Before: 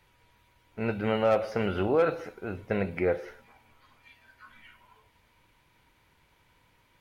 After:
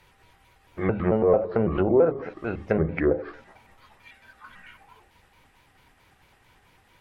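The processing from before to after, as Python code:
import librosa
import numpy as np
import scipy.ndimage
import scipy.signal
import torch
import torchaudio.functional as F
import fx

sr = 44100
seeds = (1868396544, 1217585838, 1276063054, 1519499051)

y = fx.pitch_trill(x, sr, semitones=-3.5, every_ms=111)
y = fx.hum_notches(y, sr, base_hz=50, count=6)
y = fx.env_lowpass_down(y, sr, base_hz=720.0, full_db=-24.0)
y = F.gain(torch.from_numpy(y), 6.5).numpy()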